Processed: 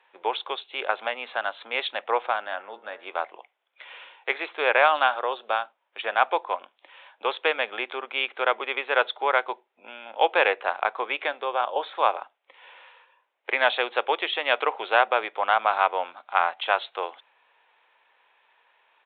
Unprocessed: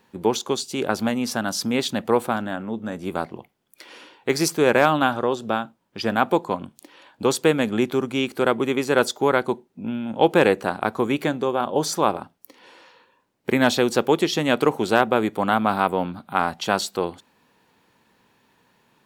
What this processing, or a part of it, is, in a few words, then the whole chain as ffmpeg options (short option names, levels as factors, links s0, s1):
musical greeting card: -filter_complex "[0:a]asettb=1/sr,asplit=3[s0][s1][s2];[s0]atrim=end=2.484[s3];[s1]atrim=start=2.48:end=3.12,asetpts=PTS-STARTPTS,afade=t=in:d=0.004:c=qsin,afade=t=out:st=0.636:d=0.004:c=qsin,bandreject=f=117.1:t=h:w=4,bandreject=f=234.2:t=h:w=4,bandreject=f=351.3:t=h:w=4,bandreject=f=468.4:t=h:w=4,bandreject=f=585.5:t=h:w=4,bandreject=f=702.6:t=h:w=4,bandreject=f=819.7:t=h:w=4,bandreject=f=936.8:t=h:w=4,bandreject=f=1053.9:t=h:w=4,bandreject=f=1171:t=h:w=4,bandreject=f=1288.1:t=h:w=4,bandreject=f=1405.2:t=h:w=4,bandreject=f=1522.3:t=h:w=4,bandreject=f=1639.4:t=h:w=4,bandreject=f=1756.5:t=h:w=4,bandreject=f=1873.6:t=h:w=4,bandreject=f=1990.7:t=h:w=4,bandreject=f=2107.8:t=h:w=4[s4];[s2]atrim=start=3.116[s5];[s3][s4]acrossfade=d=0.004:c1=hsin:c2=qsin[s6];[s6][s5]acrossfade=d=0.004:c1=qsin:c2=hsin,aresample=8000,aresample=44100,highpass=f=580:w=0.5412,highpass=f=580:w=1.3066,equalizer=f=2300:t=o:w=0.49:g=4"